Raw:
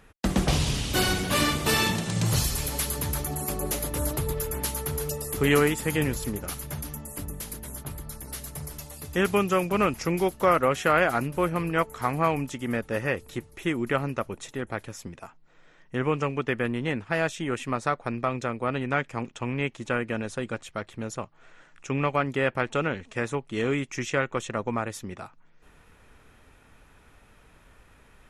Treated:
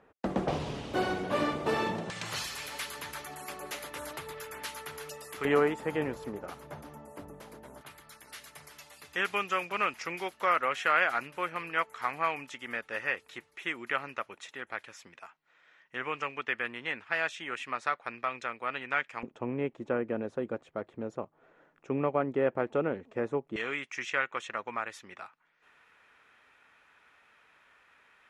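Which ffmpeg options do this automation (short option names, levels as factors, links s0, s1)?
-af "asetnsamples=n=441:p=0,asendcmd='2.1 bandpass f 1900;5.45 bandpass f 720;7.81 bandpass f 2100;19.23 bandpass f 440;23.56 bandpass f 1900',bandpass=f=580:t=q:w=0.89:csg=0"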